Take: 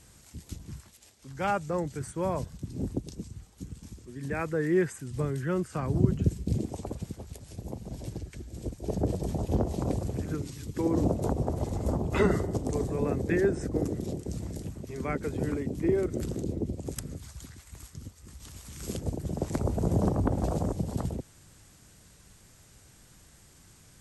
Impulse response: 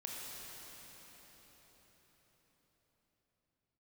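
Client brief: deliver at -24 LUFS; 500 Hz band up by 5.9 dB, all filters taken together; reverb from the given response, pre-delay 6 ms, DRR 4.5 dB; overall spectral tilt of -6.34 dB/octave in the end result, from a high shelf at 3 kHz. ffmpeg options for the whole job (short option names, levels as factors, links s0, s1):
-filter_complex "[0:a]equalizer=f=500:t=o:g=7.5,highshelf=f=3000:g=7,asplit=2[s0][s1];[1:a]atrim=start_sample=2205,adelay=6[s2];[s1][s2]afir=irnorm=-1:irlink=0,volume=0.631[s3];[s0][s3]amix=inputs=2:normalize=0,volume=1.33"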